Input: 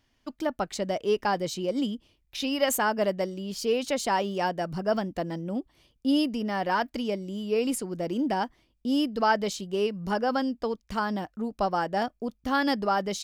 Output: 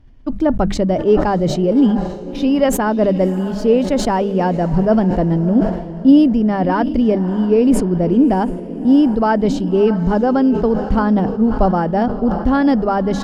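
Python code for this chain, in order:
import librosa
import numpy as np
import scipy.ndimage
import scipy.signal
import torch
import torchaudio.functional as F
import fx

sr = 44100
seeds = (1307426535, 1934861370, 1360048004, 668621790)

p1 = fx.rider(x, sr, range_db=3, speed_s=0.5)
p2 = x + F.gain(torch.from_numpy(p1), -1.0).numpy()
p3 = fx.tilt_eq(p2, sr, slope=-4.5)
p4 = fx.hum_notches(p3, sr, base_hz=50, count=4)
p5 = fx.echo_diffused(p4, sr, ms=629, feedback_pct=43, wet_db=-14)
p6 = fx.sustainer(p5, sr, db_per_s=68.0)
y = F.gain(torch.from_numpy(p6), 1.0).numpy()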